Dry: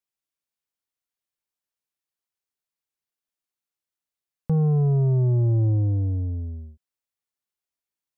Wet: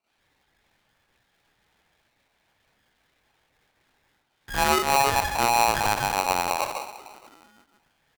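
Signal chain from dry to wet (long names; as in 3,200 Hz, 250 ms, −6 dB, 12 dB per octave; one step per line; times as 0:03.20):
time-frequency cells dropped at random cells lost 29%
high-pass filter 370 Hz 6 dB per octave
parametric band 910 Hz +6.5 dB 0.25 octaves
downward compressor 6 to 1, threshold −33 dBFS, peak gain reduction 8.5 dB
mid-hump overdrive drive 33 dB, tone 1,000 Hz, clips at −25 dBFS
echo with shifted repeats 159 ms, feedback 62%, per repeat −100 Hz, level −14 dB
convolution reverb RT60 0.40 s, pre-delay 41 ms, DRR −12 dB
linear-prediction vocoder at 8 kHz pitch kept
ring modulator with a square carrier 830 Hz
level −2 dB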